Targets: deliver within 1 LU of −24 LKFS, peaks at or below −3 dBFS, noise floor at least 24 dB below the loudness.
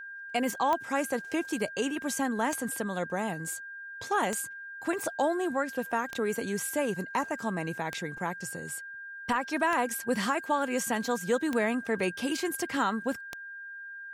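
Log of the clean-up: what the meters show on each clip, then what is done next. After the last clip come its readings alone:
number of clicks 8; interfering tone 1,600 Hz; level of the tone −40 dBFS; integrated loudness −31.0 LKFS; sample peak −12.0 dBFS; target loudness −24.0 LKFS
→ click removal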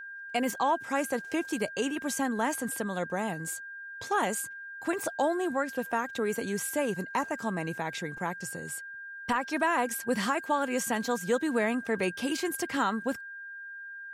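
number of clicks 0; interfering tone 1,600 Hz; level of the tone −40 dBFS
→ notch filter 1,600 Hz, Q 30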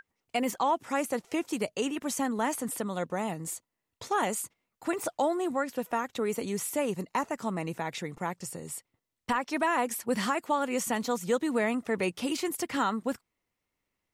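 interfering tone none found; integrated loudness −31.0 LKFS; sample peak −16.0 dBFS; target loudness −24.0 LKFS
→ level +7 dB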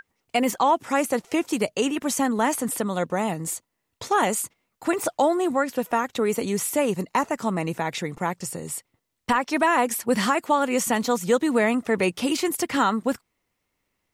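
integrated loudness −24.0 LKFS; sample peak −9.0 dBFS; background noise floor −78 dBFS

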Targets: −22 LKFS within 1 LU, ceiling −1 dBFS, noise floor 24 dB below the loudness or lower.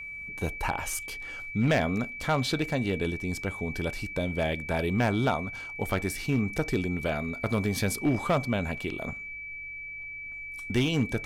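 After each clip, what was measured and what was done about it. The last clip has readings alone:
share of clipped samples 0.6%; peaks flattened at −18.0 dBFS; interfering tone 2,300 Hz; level of the tone −37 dBFS; integrated loudness −29.5 LKFS; sample peak −18.0 dBFS; target loudness −22.0 LKFS
→ clipped peaks rebuilt −18 dBFS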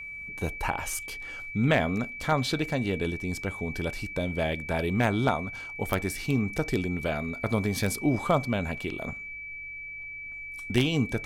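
share of clipped samples 0.0%; interfering tone 2,300 Hz; level of the tone −37 dBFS
→ notch filter 2,300 Hz, Q 30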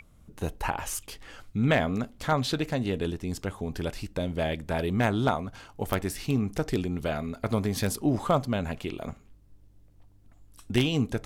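interfering tone none found; integrated loudness −29.5 LKFS; sample peak −9.0 dBFS; target loudness −22.0 LKFS
→ level +7.5 dB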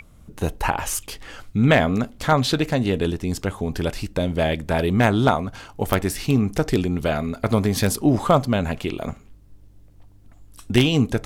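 integrated loudness −22.0 LKFS; sample peak −1.5 dBFS; background noise floor −49 dBFS

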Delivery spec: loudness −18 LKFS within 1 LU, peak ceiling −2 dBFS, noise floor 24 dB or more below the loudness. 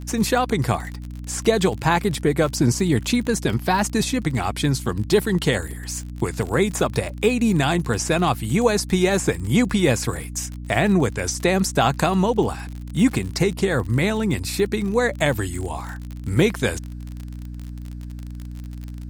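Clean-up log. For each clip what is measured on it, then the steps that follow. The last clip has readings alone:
crackle rate 47 per second; mains hum 60 Hz; hum harmonics up to 300 Hz; level of the hum −30 dBFS; integrated loudness −21.5 LKFS; sample peak −4.5 dBFS; target loudness −18.0 LKFS
→ click removal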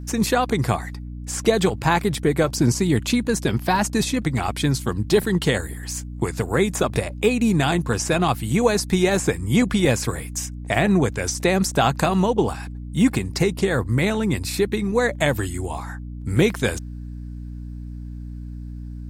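crackle rate 0.31 per second; mains hum 60 Hz; hum harmonics up to 300 Hz; level of the hum −30 dBFS
→ mains-hum notches 60/120/180/240/300 Hz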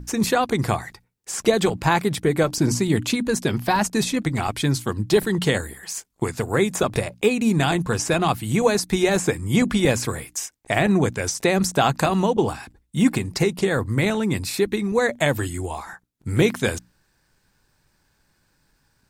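mains hum none found; integrated loudness −22.0 LKFS; sample peak −4.5 dBFS; target loudness −18.0 LKFS
→ level +4 dB
brickwall limiter −2 dBFS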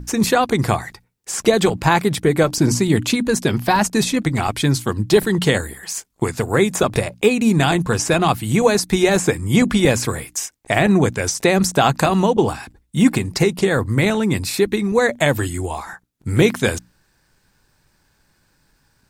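integrated loudness −18.0 LKFS; sample peak −2.0 dBFS; background noise floor −63 dBFS

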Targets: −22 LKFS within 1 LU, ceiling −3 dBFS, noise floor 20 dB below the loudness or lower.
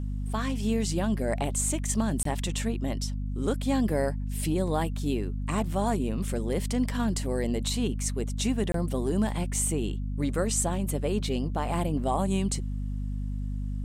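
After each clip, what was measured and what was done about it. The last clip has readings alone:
number of dropouts 2; longest dropout 23 ms; mains hum 50 Hz; hum harmonics up to 250 Hz; level of the hum −29 dBFS; integrated loudness −29.0 LKFS; sample peak −13.5 dBFS; target loudness −22.0 LKFS
→ repair the gap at 0:02.23/0:08.72, 23 ms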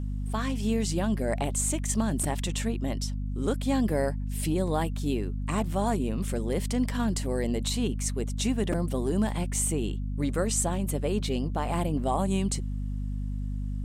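number of dropouts 0; mains hum 50 Hz; hum harmonics up to 550 Hz; level of the hum −29 dBFS
→ hum removal 50 Hz, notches 11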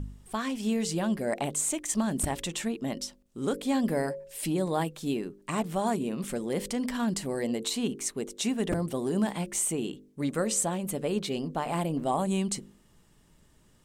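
mains hum none found; integrated loudness −30.5 LKFS; sample peak −15.5 dBFS; target loudness −22.0 LKFS
→ level +8.5 dB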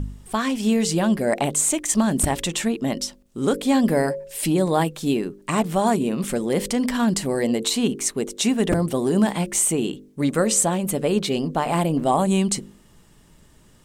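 integrated loudness −22.0 LKFS; sample peak −7.0 dBFS; background noise floor −53 dBFS

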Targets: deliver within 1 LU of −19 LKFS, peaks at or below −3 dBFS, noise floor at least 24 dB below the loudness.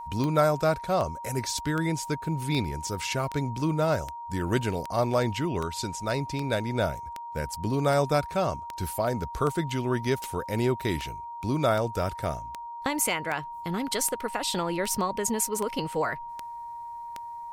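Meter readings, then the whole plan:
number of clicks 23; interfering tone 940 Hz; level of the tone −36 dBFS; integrated loudness −28.5 LKFS; sample peak −11.0 dBFS; target loudness −19.0 LKFS
→ click removal
notch filter 940 Hz, Q 30
level +9.5 dB
brickwall limiter −3 dBFS

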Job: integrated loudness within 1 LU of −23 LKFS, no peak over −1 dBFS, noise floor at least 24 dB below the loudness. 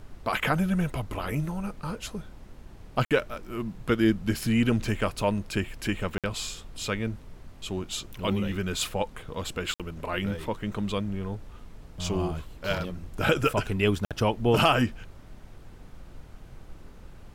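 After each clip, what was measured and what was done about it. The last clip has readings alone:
number of dropouts 4; longest dropout 57 ms; background noise floor −48 dBFS; target noise floor −53 dBFS; integrated loudness −28.5 LKFS; sample peak −10.0 dBFS; target loudness −23.0 LKFS
→ repair the gap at 0:03.05/0:06.18/0:09.74/0:14.05, 57 ms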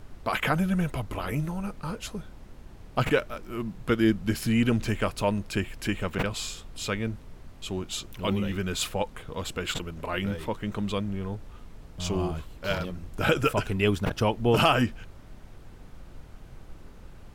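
number of dropouts 0; background noise floor −48 dBFS; target noise floor −53 dBFS
→ noise reduction from a noise print 6 dB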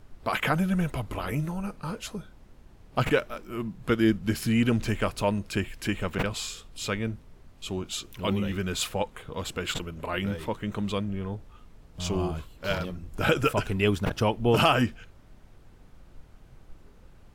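background noise floor −53 dBFS; integrated loudness −28.5 LKFS; sample peak −10.5 dBFS; target loudness −23.0 LKFS
→ level +5.5 dB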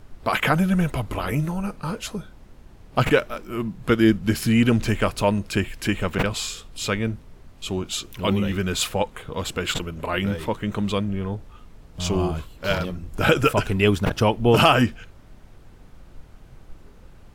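integrated loudness −23.0 LKFS; sample peak −5.0 dBFS; background noise floor −48 dBFS

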